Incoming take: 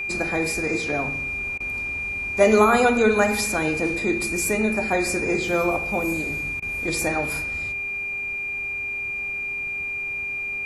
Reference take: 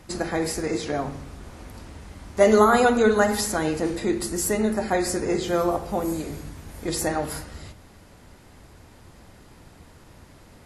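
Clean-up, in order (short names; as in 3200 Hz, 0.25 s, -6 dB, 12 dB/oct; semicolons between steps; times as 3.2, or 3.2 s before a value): de-hum 399.1 Hz, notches 8; notch 2400 Hz, Q 30; interpolate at 1.58/6.6, 21 ms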